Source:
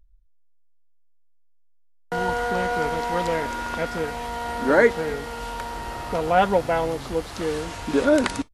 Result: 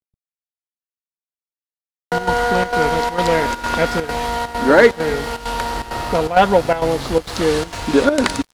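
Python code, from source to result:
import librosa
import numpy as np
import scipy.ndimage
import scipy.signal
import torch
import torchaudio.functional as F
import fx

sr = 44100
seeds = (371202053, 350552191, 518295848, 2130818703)

p1 = x + fx.echo_single(x, sr, ms=145, db=-23.5, dry=0)
p2 = np.clip(10.0 ** (9.0 / 20.0) * p1, -1.0, 1.0) / 10.0 ** (9.0 / 20.0)
p3 = fx.peak_eq(p2, sr, hz=4300.0, db=3.5, octaves=0.65)
p4 = fx.rider(p3, sr, range_db=3, speed_s=0.5)
p5 = p3 + (p4 * librosa.db_to_amplitude(1.0))
p6 = fx.chopper(p5, sr, hz=2.2, depth_pct=65, duty_pct=80)
p7 = np.sign(p6) * np.maximum(np.abs(p6) - 10.0 ** (-42.0 / 20.0), 0.0)
y = p7 * librosa.db_to_amplitude(1.5)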